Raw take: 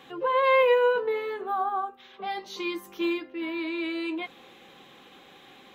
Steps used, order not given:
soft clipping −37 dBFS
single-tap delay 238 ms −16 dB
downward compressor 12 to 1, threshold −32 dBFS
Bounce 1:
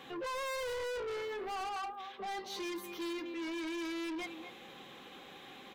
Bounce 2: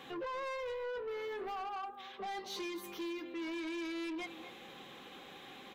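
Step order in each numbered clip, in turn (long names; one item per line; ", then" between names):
single-tap delay, then soft clipping, then downward compressor
downward compressor, then single-tap delay, then soft clipping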